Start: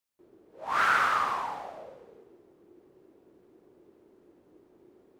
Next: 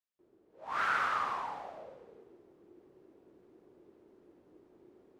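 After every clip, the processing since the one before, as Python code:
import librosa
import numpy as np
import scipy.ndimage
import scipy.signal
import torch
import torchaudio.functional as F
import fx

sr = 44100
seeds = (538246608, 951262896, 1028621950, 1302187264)

y = fx.high_shelf(x, sr, hz=9500.0, db=-11.0)
y = fx.rider(y, sr, range_db=10, speed_s=2.0)
y = y * librosa.db_to_amplitude(-5.5)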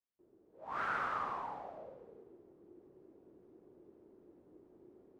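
y = fx.tilt_shelf(x, sr, db=6.5, hz=1300.0)
y = y * librosa.db_to_amplitude(-5.5)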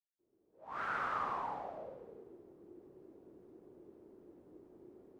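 y = fx.fade_in_head(x, sr, length_s=1.52)
y = y * librosa.db_to_amplitude(3.0)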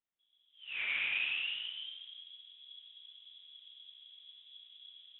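y = fx.freq_invert(x, sr, carrier_hz=3700)
y = y * librosa.db_to_amplitude(2.5)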